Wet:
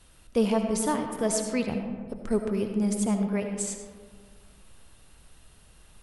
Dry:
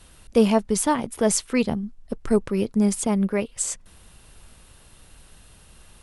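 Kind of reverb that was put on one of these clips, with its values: digital reverb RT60 1.7 s, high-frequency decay 0.4×, pre-delay 35 ms, DRR 4.5 dB; gain -6.5 dB

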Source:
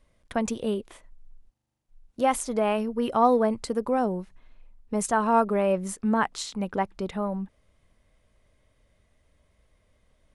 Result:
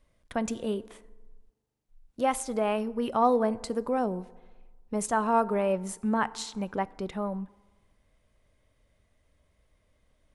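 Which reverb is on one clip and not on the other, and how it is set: FDN reverb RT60 1.3 s, low-frequency decay 1×, high-frequency decay 0.5×, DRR 17.5 dB; gain -3 dB

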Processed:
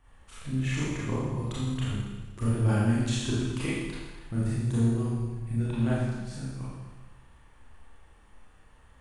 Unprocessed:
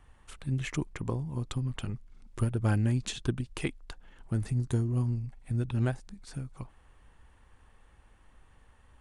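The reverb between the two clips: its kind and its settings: Schroeder reverb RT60 1.3 s, combs from 27 ms, DRR -9 dB; gain -5.5 dB

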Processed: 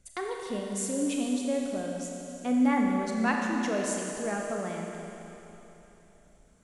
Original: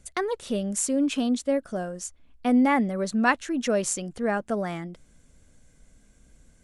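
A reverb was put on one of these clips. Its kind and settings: Schroeder reverb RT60 3.4 s, combs from 28 ms, DRR 0 dB; gain -7.5 dB

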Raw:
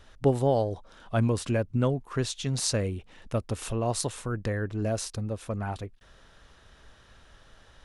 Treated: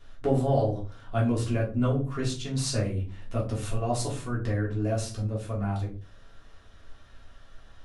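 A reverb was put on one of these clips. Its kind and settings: shoebox room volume 210 m³, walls furnished, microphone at 3.2 m; gain -8 dB

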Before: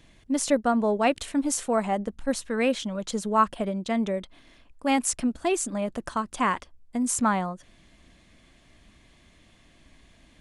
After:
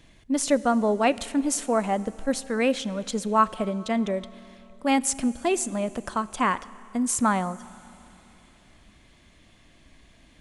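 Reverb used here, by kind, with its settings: Schroeder reverb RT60 3.2 s, combs from 26 ms, DRR 18 dB; gain +1 dB

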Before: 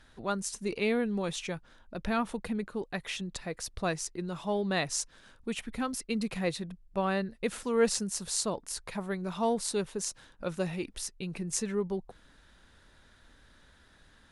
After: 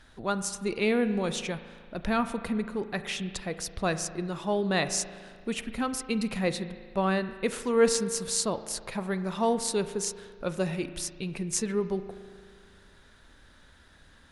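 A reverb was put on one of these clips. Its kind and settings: spring tank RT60 1.9 s, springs 37 ms, chirp 35 ms, DRR 11 dB; gain +3 dB

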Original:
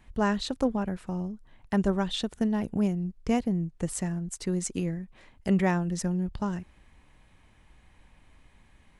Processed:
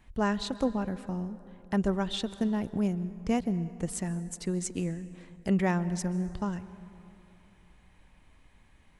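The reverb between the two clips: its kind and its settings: plate-style reverb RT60 2.9 s, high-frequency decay 0.45×, pre-delay 0.12 s, DRR 15.5 dB; gain -2 dB

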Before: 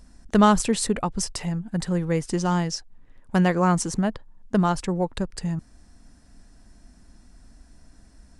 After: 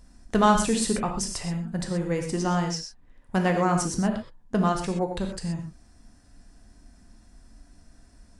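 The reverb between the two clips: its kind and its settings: non-linear reverb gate 0.15 s flat, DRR 2.5 dB; gain -3 dB

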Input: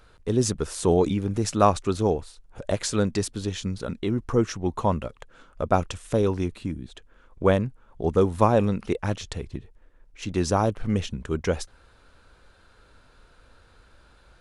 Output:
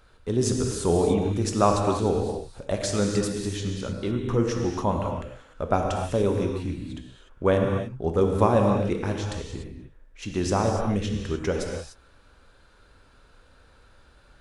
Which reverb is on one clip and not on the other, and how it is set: non-linear reverb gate 0.32 s flat, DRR 1.5 dB; gain -2.5 dB

